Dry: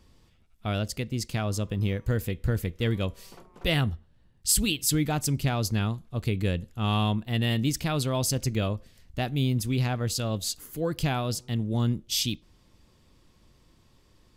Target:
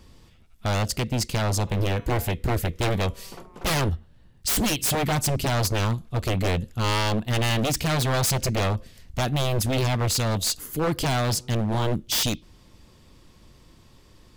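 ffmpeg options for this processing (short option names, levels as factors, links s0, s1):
-filter_complex "[0:a]aeval=exprs='0.0531*(abs(mod(val(0)/0.0531+3,4)-2)-1)':c=same,asplit=3[s0][s1][s2];[s0]afade=t=out:st=1.66:d=0.02[s3];[s1]bandreject=f=140.1:t=h:w=4,bandreject=f=280.2:t=h:w=4,bandreject=f=420.3:t=h:w=4,bandreject=f=560.4:t=h:w=4,bandreject=f=700.5:t=h:w=4,bandreject=f=840.6:t=h:w=4,bandreject=f=980.7:t=h:w=4,bandreject=f=1120.8:t=h:w=4,bandreject=f=1260.9:t=h:w=4,bandreject=f=1401:t=h:w=4,bandreject=f=1541.1:t=h:w=4,bandreject=f=1681.2:t=h:w=4,bandreject=f=1821.3:t=h:w=4,bandreject=f=1961.4:t=h:w=4,bandreject=f=2101.5:t=h:w=4,bandreject=f=2241.6:t=h:w=4,bandreject=f=2381.7:t=h:w=4,bandreject=f=2521.8:t=h:w=4,bandreject=f=2661.9:t=h:w=4,bandreject=f=2802:t=h:w=4,bandreject=f=2942.1:t=h:w=4,bandreject=f=3082.2:t=h:w=4,bandreject=f=3222.3:t=h:w=4,bandreject=f=3362.4:t=h:w=4,bandreject=f=3502.5:t=h:w=4,bandreject=f=3642.6:t=h:w=4,bandreject=f=3782.7:t=h:w=4,bandreject=f=3922.8:t=h:w=4,bandreject=f=4062.9:t=h:w=4,afade=t=in:st=1.66:d=0.02,afade=t=out:st=2.33:d=0.02[s4];[s2]afade=t=in:st=2.33:d=0.02[s5];[s3][s4][s5]amix=inputs=3:normalize=0,volume=2.37"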